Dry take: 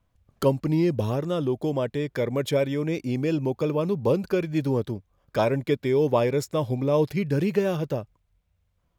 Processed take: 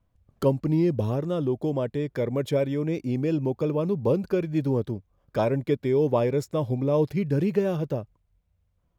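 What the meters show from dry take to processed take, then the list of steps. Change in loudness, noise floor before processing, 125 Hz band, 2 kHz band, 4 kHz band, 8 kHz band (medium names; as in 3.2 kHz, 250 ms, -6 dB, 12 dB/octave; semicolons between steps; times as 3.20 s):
-0.5 dB, -71 dBFS, +0.5 dB, -5.0 dB, -6.0 dB, no reading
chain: tilt shelf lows +3.5 dB; trim -3 dB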